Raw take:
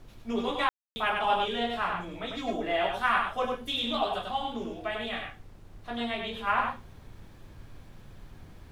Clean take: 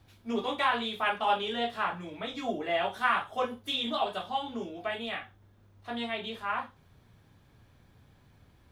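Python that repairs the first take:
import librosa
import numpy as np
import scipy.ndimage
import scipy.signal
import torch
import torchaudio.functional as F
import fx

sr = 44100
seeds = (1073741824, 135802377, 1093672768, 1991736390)

y = fx.fix_ambience(x, sr, seeds[0], print_start_s=5.32, print_end_s=5.82, start_s=0.69, end_s=0.96)
y = fx.noise_reduce(y, sr, print_start_s=5.32, print_end_s=5.82, reduce_db=11.0)
y = fx.fix_echo_inverse(y, sr, delay_ms=98, level_db=-4.0)
y = fx.fix_level(y, sr, at_s=6.47, step_db=-5.0)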